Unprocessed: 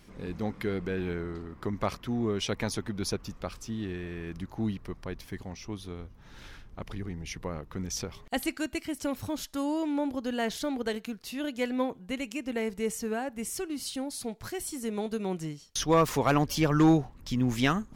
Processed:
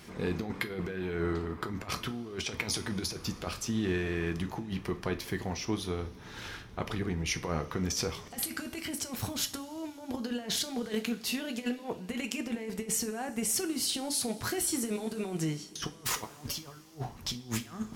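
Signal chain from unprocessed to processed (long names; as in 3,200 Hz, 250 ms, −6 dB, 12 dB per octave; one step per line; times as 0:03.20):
high-pass filter 57 Hz
low-shelf EQ 390 Hz −3.5 dB
compressor whose output falls as the input rises −37 dBFS, ratio −0.5
coupled-rooms reverb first 0.29 s, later 4.4 s, from −22 dB, DRR 6.5 dB
level +2.5 dB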